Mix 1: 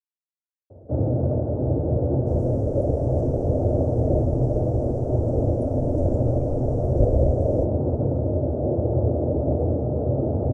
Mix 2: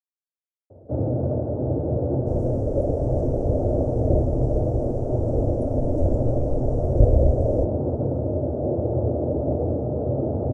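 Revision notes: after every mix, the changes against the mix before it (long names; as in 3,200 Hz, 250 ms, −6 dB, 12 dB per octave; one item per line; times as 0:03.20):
first sound: add low-shelf EQ 92 Hz −12 dB
master: add low-shelf EQ 91 Hz +6.5 dB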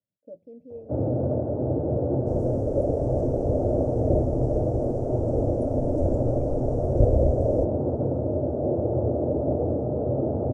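speech: unmuted
master: add low-shelf EQ 91 Hz −6.5 dB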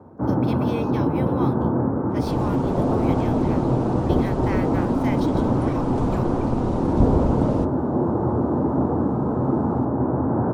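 speech: remove resonant band-pass 210 Hz, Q 1.4
first sound: entry −0.70 s
master: remove drawn EQ curve 110 Hz 0 dB, 190 Hz −12 dB, 390 Hz −3 dB, 610 Hz +6 dB, 1,000 Hz −24 dB, 1,500 Hz −22 dB, 3,900 Hz −26 dB, 5,800 Hz −8 dB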